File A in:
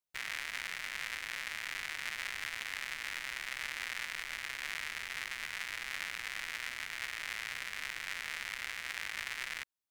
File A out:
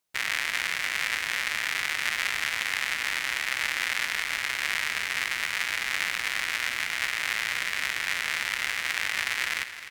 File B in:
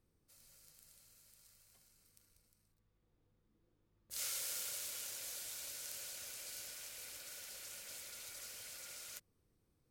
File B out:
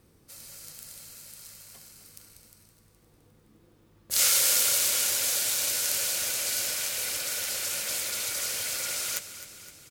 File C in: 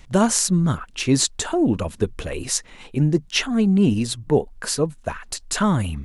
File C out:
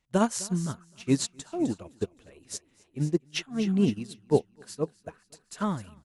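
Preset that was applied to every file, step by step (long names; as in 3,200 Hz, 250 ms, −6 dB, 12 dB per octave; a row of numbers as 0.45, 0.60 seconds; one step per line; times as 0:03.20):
high-pass filter 79 Hz 6 dB per octave
pitch vibrato 4.2 Hz 6.4 cents
on a send: repeating echo 258 ms, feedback 60%, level −13 dB
on the sum: expander for the loud parts 2.5 to 1, over −29 dBFS
normalise the peak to −9 dBFS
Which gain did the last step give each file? +11.0, +19.0, −2.5 decibels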